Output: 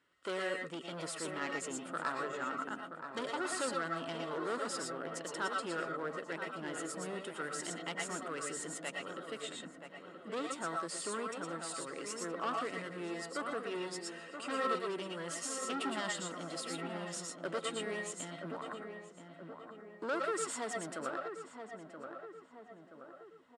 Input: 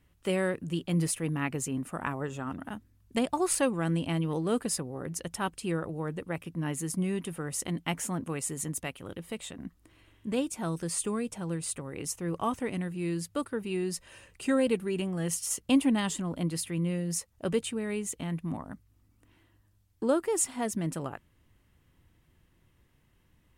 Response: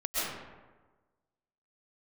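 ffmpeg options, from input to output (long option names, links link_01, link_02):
-filter_complex "[0:a]volume=30dB,asoftclip=hard,volume=-30dB,highpass=400,equalizer=frequency=780:width_type=q:width=4:gain=-5,equalizer=frequency=1400:width_type=q:width=4:gain=8,equalizer=frequency=2400:width_type=q:width=4:gain=-5,equalizer=frequency=6200:width_type=q:width=4:gain=-7,lowpass=frequency=7700:width=0.5412,lowpass=frequency=7700:width=1.3066,asplit=2[link_01][link_02];[link_02]adelay=976,lowpass=frequency=1600:poles=1,volume=-7dB,asplit=2[link_03][link_04];[link_04]adelay=976,lowpass=frequency=1600:poles=1,volume=0.54,asplit=2[link_05][link_06];[link_06]adelay=976,lowpass=frequency=1600:poles=1,volume=0.54,asplit=2[link_07][link_08];[link_08]adelay=976,lowpass=frequency=1600:poles=1,volume=0.54,asplit=2[link_09][link_10];[link_10]adelay=976,lowpass=frequency=1600:poles=1,volume=0.54,asplit=2[link_11][link_12];[link_12]adelay=976,lowpass=frequency=1600:poles=1,volume=0.54,asplit=2[link_13][link_14];[link_14]adelay=976,lowpass=frequency=1600:poles=1,volume=0.54[link_15];[link_01][link_03][link_05][link_07][link_09][link_11][link_13][link_15]amix=inputs=8:normalize=0[link_16];[1:a]atrim=start_sample=2205,afade=type=out:start_time=0.17:duration=0.01,atrim=end_sample=7938[link_17];[link_16][link_17]afir=irnorm=-1:irlink=0"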